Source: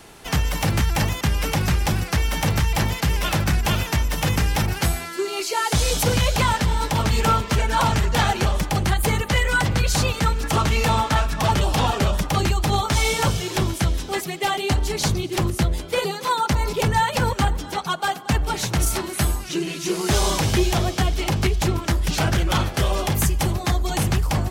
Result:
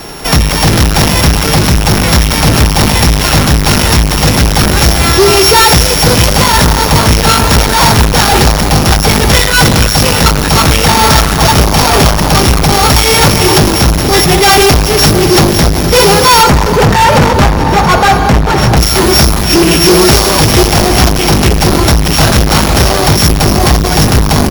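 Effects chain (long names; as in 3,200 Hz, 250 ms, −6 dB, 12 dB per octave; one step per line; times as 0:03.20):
samples sorted by size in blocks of 8 samples
slap from a distant wall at 120 metres, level −18 dB
automatic gain control gain up to 11.5 dB
0:16.43–0:18.77: low-pass filter 1,500 Hz 6 dB per octave
four-comb reverb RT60 3.6 s, combs from 28 ms, DRR 9 dB
gain into a clipping stage and back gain 18.5 dB
mains-hum notches 50/100 Hz
boost into a limiter +20.5 dB
level −1 dB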